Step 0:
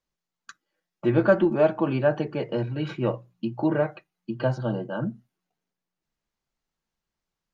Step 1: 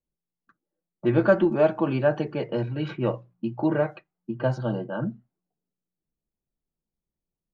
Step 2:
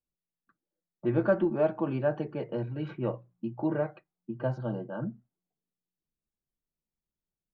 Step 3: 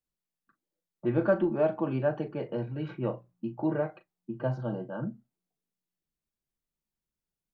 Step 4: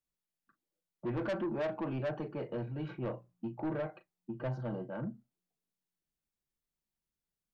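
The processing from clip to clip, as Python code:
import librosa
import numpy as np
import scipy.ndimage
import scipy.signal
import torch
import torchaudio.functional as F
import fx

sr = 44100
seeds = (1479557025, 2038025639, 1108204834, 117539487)

y1 = fx.env_lowpass(x, sr, base_hz=460.0, full_db=-21.5)
y2 = fx.high_shelf(y1, sr, hz=2700.0, db=-11.0)
y2 = F.gain(torch.from_numpy(y2), -5.5).numpy()
y3 = fx.doubler(y2, sr, ms=38.0, db=-12)
y4 = 10.0 ** (-28.0 / 20.0) * np.tanh(y3 / 10.0 ** (-28.0 / 20.0))
y4 = F.gain(torch.from_numpy(y4), -2.5).numpy()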